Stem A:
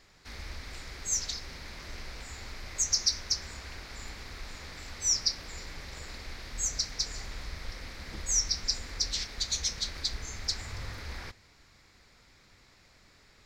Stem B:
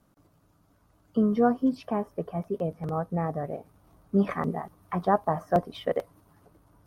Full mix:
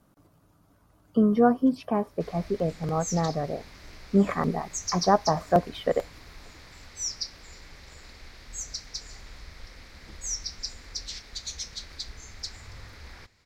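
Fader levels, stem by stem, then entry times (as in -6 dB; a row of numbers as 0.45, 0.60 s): -5.0, +2.5 dB; 1.95, 0.00 s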